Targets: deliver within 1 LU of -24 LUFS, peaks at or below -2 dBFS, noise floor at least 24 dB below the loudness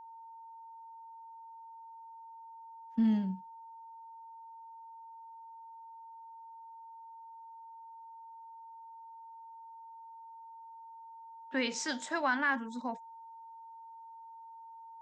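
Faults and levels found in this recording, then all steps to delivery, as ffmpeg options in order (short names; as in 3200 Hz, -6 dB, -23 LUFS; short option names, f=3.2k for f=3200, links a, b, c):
steady tone 910 Hz; tone level -48 dBFS; loudness -33.5 LUFS; peak -19.0 dBFS; loudness target -24.0 LUFS
-> -af "bandreject=f=910:w=30"
-af "volume=9.5dB"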